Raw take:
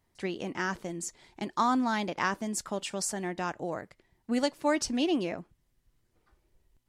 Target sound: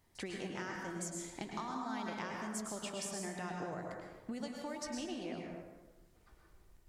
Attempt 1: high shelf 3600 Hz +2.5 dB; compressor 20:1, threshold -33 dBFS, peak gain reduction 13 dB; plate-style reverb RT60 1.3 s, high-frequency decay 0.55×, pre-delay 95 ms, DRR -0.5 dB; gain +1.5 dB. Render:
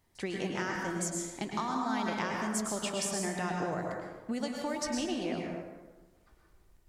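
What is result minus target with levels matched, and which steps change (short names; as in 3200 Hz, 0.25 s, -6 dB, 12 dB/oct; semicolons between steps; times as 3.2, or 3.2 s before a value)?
compressor: peak gain reduction -8 dB
change: compressor 20:1, threshold -41.5 dBFS, peak gain reduction 21 dB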